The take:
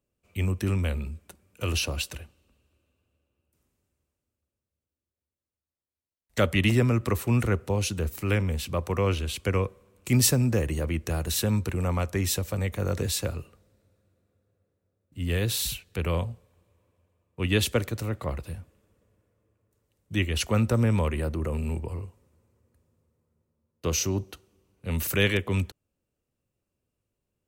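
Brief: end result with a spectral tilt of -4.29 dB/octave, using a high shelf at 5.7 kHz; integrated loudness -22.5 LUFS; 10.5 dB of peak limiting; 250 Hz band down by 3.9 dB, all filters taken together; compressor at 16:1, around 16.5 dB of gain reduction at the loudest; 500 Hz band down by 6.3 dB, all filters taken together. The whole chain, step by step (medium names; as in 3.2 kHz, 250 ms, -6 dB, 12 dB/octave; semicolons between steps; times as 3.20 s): peaking EQ 250 Hz -3.5 dB; peaking EQ 500 Hz -6.5 dB; treble shelf 5.7 kHz +6 dB; compression 16:1, threshold -30 dBFS; trim +14.5 dB; peak limiter -12 dBFS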